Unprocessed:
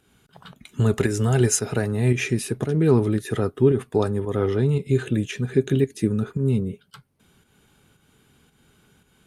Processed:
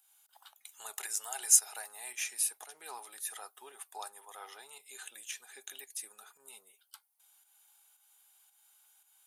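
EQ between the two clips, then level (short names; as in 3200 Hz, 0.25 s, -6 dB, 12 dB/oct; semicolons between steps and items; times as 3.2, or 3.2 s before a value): resonant high-pass 800 Hz, resonance Q 5.3; differentiator; high shelf 9300 Hz +10.5 dB; -4.0 dB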